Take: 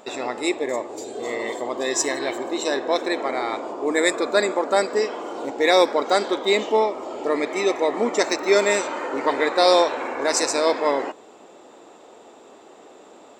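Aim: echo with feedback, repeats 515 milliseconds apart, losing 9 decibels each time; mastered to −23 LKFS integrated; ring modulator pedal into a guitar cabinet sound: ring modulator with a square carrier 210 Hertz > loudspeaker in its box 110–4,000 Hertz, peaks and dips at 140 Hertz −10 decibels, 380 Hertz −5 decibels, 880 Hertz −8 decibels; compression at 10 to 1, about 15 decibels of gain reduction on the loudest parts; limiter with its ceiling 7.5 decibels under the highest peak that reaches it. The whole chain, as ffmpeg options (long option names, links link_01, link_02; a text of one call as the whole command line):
ffmpeg -i in.wav -af "acompressor=threshold=-27dB:ratio=10,alimiter=limit=-24dB:level=0:latency=1,aecho=1:1:515|1030|1545|2060:0.355|0.124|0.0435|0.0152,aeval=exprs='val(0)*sgn(sin(2*PI*210*n/s))':channel_layout=same,highpass=110,equalizer=frequency=140:width_type=q:width=4:gain=-10,equalizer=frequency=380:width_type=q:width=4:gain=-5,equalizer=frequency=880:width_type=q:width=4:gain=-8,lowpass=frequency=4000:width=0.5412,lowpass=frequency=4000:width=1.3066,volume=13dB" out.wav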